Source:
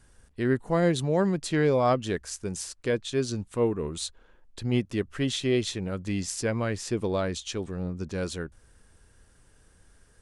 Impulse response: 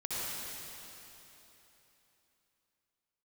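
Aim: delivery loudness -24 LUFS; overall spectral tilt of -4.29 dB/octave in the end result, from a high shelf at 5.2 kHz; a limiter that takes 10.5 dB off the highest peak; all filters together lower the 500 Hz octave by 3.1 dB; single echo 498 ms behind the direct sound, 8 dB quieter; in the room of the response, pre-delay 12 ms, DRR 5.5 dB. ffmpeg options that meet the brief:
-filter_complex "[0:a]equalizer=f=500:t=o:g=-4,highshelf=f=5200:g=8,alimiter=limit=0.112:level=0:latency=1,aecho=1:1:498:0.398,asplit=2[s0][s1];[1:a]atrim=start_sample=2205,adelay=12[s2];[s1][s2]afir=irnorm=-1:irlink=0,volume=0.299[s3];[s0][s3]amix=inputs=2:normalize=0,volume=1.78"

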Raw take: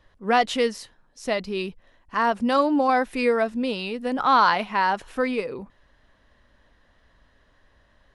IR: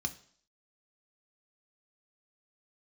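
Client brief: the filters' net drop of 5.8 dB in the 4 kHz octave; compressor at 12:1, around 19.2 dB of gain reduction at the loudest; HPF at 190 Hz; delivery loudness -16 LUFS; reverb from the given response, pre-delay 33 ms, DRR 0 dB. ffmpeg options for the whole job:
-filter_complex "[0:a]highpass=190,equalizer=f=4000:t=o:g=-8,acompressor=threshold=0.02:ratio=12,asplit=2[s0][s1];[1:a]atrim=start_sample=2205,adelay=33[s2];[s1][s2]afir=irnorm=-1:irlink=0,volume=0.794[s3];[s0][s3]amix=inputs=2:normalize=0,volume=9.44"

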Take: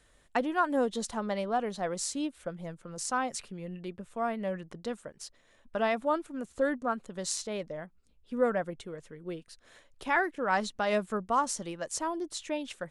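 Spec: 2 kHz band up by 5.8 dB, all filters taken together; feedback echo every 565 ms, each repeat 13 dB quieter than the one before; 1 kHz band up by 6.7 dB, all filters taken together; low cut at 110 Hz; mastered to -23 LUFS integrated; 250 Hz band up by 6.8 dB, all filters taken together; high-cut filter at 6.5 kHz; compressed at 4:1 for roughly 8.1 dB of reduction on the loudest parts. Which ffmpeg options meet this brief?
-af "highpass=110,lowpass=6500,equalizer=f=250:t=o:g=8,equalizer=f=1000:t=o:g=7,equalizer=f=2000:t=o:g=4.5,acompressor=threshold=0.0562:ratio=4,aecho=1:1:565|1130|1695:0.224|0.0493|0.0108,volume=2.66"

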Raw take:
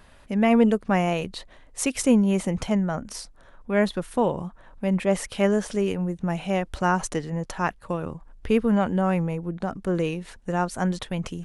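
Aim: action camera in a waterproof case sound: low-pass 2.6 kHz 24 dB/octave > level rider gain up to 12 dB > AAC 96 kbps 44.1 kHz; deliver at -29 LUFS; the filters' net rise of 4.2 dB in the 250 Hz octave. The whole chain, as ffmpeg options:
-af "lowpass=f=2600:w=0.5412,lowpass=f=2600:w=1.3066,equalizer=f=250:t=o:g=5.5,dynaudnorm=m=3.98,volume=0.447" -ar 44100 -c:a aac -b:a 96k

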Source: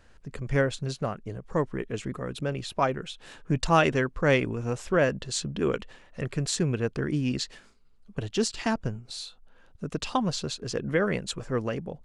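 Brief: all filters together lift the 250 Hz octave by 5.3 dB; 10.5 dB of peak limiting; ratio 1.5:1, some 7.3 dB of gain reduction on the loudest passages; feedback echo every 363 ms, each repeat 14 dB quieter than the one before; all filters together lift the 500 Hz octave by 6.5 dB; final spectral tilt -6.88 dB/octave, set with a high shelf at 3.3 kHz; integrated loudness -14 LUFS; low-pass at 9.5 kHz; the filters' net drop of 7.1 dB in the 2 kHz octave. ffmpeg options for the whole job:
-af "lowpass=9500,equalizer=f=250:t=o:g=5,equalizer=f=500:t=o:g=7,equalizer=f=2000:t=o:g=-7.5,highshelf=f=3300:g=-9,acompressor=threshold=0.02:ratio=1.5,alimiter=level_in=1.06:limit=0.0631:level=0:latency=1,volume=0.944,aecho=1:1:363|726:0.2|0.0399,volume=11.2"

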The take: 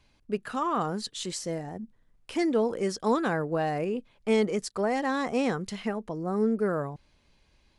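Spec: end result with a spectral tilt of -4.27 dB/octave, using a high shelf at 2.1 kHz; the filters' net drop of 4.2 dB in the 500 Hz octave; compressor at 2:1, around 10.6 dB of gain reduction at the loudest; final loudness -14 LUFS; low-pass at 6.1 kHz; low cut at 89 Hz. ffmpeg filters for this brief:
-af "highpass=89,lowpass=6100,equalizer=f=500:t=o:g=-5.5,highshelf=f=2100:g=6.5,acompressor=threshold=0.00891:ratio=2,volume=16.8"

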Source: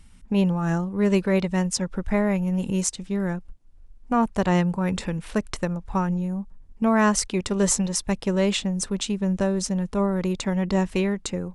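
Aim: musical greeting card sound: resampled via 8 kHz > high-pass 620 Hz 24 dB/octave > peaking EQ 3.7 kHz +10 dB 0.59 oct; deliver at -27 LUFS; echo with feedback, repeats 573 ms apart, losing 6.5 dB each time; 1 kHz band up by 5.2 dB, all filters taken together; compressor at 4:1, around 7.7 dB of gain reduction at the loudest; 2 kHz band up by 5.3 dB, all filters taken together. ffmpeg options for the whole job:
-af "equalizer=f=1000:t=o:g=5.5,equalizer=f=2000:t=o:g=3.5,acompressor=threshold=0.0708:ratio=4,aecho=1:1:573|1146|1719|2292|2865|3438:0.473|0.222|0.105|0.0491|0.0231|0.0109,aresample=8000,aresample=44100,highpass=f=620:w=0.5412,highpass=f=620:w=1.3066,equalizer=f=3700:t=o:w=0.59:g=10,volume=1.78"

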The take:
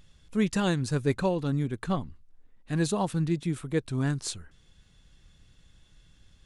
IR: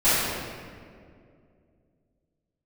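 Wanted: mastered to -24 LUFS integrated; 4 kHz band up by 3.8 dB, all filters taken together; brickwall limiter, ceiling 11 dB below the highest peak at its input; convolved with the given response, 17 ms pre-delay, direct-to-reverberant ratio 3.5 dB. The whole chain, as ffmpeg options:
-filter_complex "[0:a]equalizer=f=4000:t=o:g=4.5,alimiter=level_in=1.06:limit=0.0631:level=0:latency=1,volume=0.944,asplit=2[s0][s1];[1:a]atrim=start_sample=2205,adelay=17[s2];[s1][s2]afir=irnorm=-1:irlink=0,volume=0.075[s3];[s0][s3]amix=inputs=2:normalize=0,volume=2.82"

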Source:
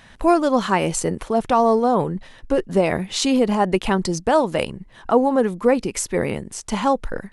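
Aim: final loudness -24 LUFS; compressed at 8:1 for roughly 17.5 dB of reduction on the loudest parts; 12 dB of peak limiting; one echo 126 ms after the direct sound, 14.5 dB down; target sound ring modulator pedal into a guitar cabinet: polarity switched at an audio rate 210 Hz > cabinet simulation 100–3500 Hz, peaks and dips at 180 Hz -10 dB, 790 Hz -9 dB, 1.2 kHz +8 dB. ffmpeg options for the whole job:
-af "acompressor=threshold=0.0316:ratio=8,alimiter=level_in=1.68:limit=0.0631:level=0:latency=1,volume=0.596,aecho=1:1:126:0.188,aeval=exprs='val(0)*sgn(sin(2*PI*210*n/s))':c=same,highpass=100,equalizer=f=180:t=q:w=4:g=-10,equalizer=f=790:t=q:w=4:g=-9,equalizer=f=1200:t=q:w=4:g=8,lowpass=f=3500:w=0.5412,lowpass=f=3500:w=1.3066,volume=5.96"

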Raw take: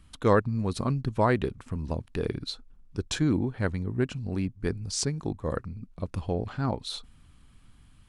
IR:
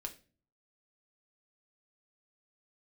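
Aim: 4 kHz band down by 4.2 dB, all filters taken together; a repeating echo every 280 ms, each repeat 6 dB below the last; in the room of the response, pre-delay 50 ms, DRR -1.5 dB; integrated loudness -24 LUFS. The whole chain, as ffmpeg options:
-filter_complex "[0:a]equalizer=f=4000:t=o:g=-5,aecho=1:1:280|560|840|1120|1400|1680:0.501|0.251|0.125|0.0626|0.0313|0.0157,asplit=2[s0][s1];[1:a]atrim=start_sample=2205,adelay=50[s2];[s1][s2]afir=irnorm=-1:irlink=0,volume=1.58[s3];[s0][s3]amix=inputs=2:normalize=0,volume=1.12"

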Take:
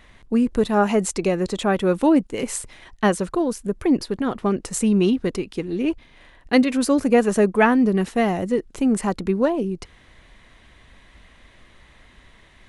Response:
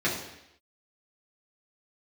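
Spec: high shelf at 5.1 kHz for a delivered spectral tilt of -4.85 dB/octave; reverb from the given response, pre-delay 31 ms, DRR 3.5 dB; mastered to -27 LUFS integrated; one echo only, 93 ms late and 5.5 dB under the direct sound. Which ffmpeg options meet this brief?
-filter_complex "[0:a]highshelf=f=5100:g=-4.5,aecho=1:1:93:0.531,asplit=2[s0][s1];[1:a]atrim=start_sample=2205,adelay=31[s2];[s1][s2]afir=irnorm=-1:irlink=0,volume=0.168[s3];[s0][s3]amix=inputs=2:normalize=0,volume=0.335"

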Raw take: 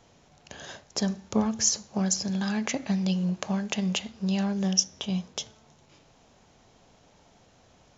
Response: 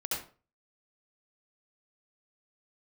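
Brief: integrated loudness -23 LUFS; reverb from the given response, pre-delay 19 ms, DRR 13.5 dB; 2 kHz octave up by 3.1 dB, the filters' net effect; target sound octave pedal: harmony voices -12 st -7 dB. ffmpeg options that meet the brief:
-filter_complex "[0:a]equalizer=f=2000:t=o:g=4,asplit=2[s0][s1];[1:a]atrim=start_sample=2205,adelay=19[s2];[s1][s2]afir=irnorm=-1:irlink=0,volume=0.126[s3];[s0][s3]amix=inputs=2:normalize=0,asplit=2[s4][s5];[s5]asetrate=22050,aresample=44100,atempo=2,volume=0.447[s6];[s4][s6]amix=inputs=2:normalize=0,volume=1.58"

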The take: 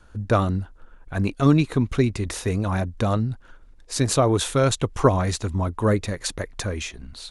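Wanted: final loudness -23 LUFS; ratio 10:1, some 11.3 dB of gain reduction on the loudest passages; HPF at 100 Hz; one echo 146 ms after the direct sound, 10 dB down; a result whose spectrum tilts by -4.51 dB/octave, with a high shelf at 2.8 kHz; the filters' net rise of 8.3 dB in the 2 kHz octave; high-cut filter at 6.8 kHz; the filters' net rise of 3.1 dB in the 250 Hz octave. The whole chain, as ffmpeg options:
-af "highpass=100,lowpass=6800,equalizer=f=250:t=o:g=4,equalizer=f=2000:t=o:g=9,highshelf=f=2800:g=4.5,acompressor=threshold=0.1:ratio=10,aecho=1:1:146:0.316,volume=1.5"

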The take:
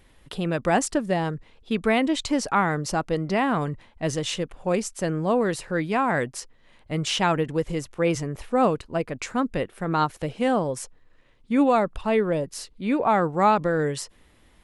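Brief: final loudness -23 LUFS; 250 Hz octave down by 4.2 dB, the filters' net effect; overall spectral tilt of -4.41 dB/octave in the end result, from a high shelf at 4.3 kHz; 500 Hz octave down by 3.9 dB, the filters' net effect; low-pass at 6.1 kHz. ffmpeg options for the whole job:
-af "lowpass=6100,equalizer=f=250:t=o:g=-4.5,equalizer=f=500:t=o:g=-3.5,highshelf=f=4300:g=-5,volume=1.68"

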